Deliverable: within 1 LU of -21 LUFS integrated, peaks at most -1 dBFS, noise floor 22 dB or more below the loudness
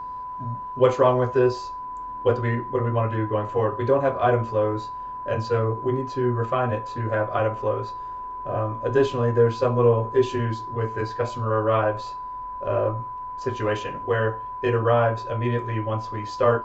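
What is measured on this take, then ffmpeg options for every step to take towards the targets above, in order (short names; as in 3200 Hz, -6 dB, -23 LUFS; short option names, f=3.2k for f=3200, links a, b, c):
steady tone 1000 Hz; tone level -31 dBFS; loudness -24.5 LUFS; peak -5.5 dBFS; loudness target -21.0 LUFS
-> -af "bandreject=f=1k:w=30"
-af "volume=3.5dB"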